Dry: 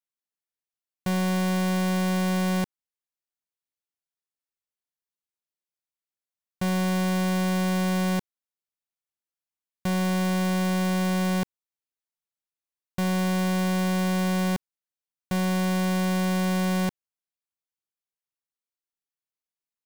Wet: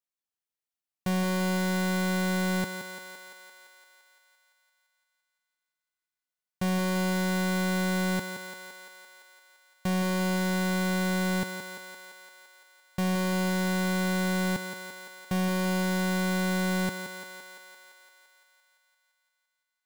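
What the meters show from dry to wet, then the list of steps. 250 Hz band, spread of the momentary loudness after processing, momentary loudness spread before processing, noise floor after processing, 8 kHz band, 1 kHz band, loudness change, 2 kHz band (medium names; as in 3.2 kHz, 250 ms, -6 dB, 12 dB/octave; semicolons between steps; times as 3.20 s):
-3.5 dB, 16 LU, 6 LU, under -85 dBFS, -0.5 dB, -2.5 dB, -3.0 dB, +2.0 dB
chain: thinning echo 171 ms, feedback 73%, high-pass 320 Hz, level -6.5 dB; trim -2 dB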